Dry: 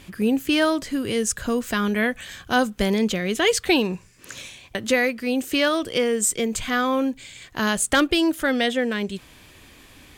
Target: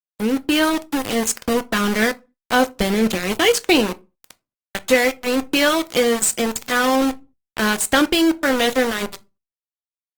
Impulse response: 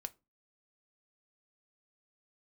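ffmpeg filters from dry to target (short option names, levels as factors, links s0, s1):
-filter_complex "[0:a]aeval=exprs='val(0)*gte(abs(val(0)),0.075)':c=same,dynaudnorm=f=300:g=3:m=1.78[s0];[1:a]atrim=start_sample=2205[s1];[s0][s1]afir=irnorm=-1:irlink=0,volume=1.41" -ar 48000 -c:a libopus -b:a 20k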